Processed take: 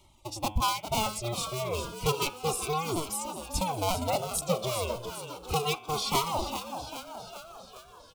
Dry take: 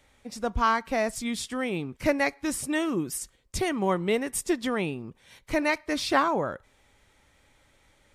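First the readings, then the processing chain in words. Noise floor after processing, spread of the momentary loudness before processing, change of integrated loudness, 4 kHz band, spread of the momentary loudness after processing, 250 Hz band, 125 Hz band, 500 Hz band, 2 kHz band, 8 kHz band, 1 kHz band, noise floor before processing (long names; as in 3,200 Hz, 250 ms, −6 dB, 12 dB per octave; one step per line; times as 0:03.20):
−53 dBFS, 10 LU, −3.0 dB, +3.5 dB, 13 LU, −9.0 dB, +3.5 dB, −3.5 dB, −9.0 dB, +1.5 dB, −1.0 dB, −64 dBFS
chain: sub-harmonics by changed cycles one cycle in 2, inverted
reverb reduction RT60 0.84 s
hum removal 106 Hz, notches 34
in parallel at −1 dB: downward compressor, threshold −38 dBFS, peak gain reduction 18.5 dB
on the sum: floating-point word with a short mantissa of 4 bits
Butterworth band-reject 1,700 Hz, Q 1.3
echo with shifted repeats 403 ms, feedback 60%, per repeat +58 Hz, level −9 dB
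flanger whose copies keep moving one way falling 0.32 Hz
level +1.5 dB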